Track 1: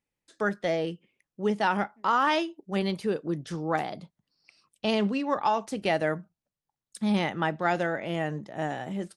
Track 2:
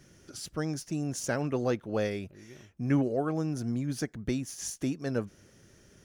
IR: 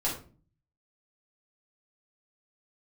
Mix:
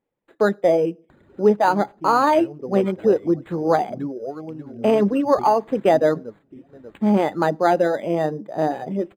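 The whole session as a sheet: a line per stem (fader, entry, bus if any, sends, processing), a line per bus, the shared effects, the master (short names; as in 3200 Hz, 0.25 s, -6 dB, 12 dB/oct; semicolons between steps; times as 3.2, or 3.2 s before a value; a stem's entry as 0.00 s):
-2.0 dB, 0.00 s, send -20.5 dB, no echo send, dry
-2.5 dB, 1.10 s, no send, echo send -20 dB, upward compressor, threshold -35 dBFS; auto duck -10 dB, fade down 1.60 s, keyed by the first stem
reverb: on, RT60 0.40 s, pre-delay 4 ms
echo: feedback echo 0.59 s, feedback 49%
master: reverb removal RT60 0.7 s; bell 470 Hz +14.5 dB 3 oct; decimation joined by straight lines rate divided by 8×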